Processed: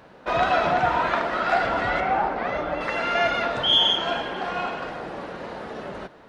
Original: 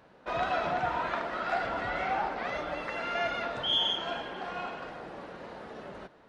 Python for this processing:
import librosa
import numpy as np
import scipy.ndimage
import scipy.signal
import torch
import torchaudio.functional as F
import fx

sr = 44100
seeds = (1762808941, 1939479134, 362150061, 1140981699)

y = fx.high_shelf(x, sr, hz=2600.0, db=-11.5, at=(2.0, 2.81))
y = F.gain(torch.from_numpy(y), 9.0).numpy()